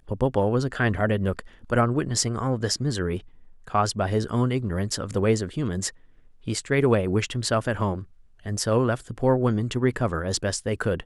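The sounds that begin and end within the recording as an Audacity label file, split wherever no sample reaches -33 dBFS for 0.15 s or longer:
1.640000	3.190000	sound
3.680000	5.900000	sound
6.470000	8.030000	sound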